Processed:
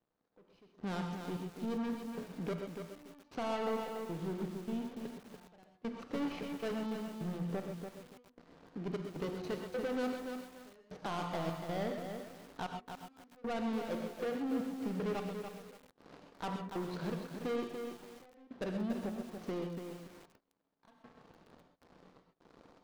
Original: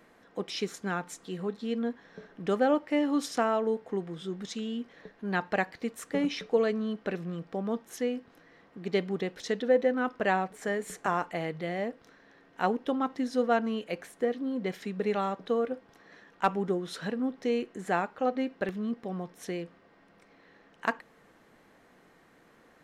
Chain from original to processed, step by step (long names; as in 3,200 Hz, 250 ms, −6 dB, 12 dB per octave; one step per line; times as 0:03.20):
running median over 25 samples
Butterworth low-pass 5,900 Hz
hum removal 121.4 Hz, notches 17
brickwall limiter −21.5 dBFS, peak gain reduction 8 dB
leveller curve on the samples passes 3
downward compressor 1.5 to 1, threshold −45 dBFS, peak gain reduction 7.5 dB
gate pattern "....xxx.xx.xx" 77 BPM −24 dB
reverb whose tail is shaped and stops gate 150 ms rising, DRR 5 dB
feedback echo at a low word length 288 ms, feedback 35%, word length 8 bits, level −5.5 dB
level −4 dB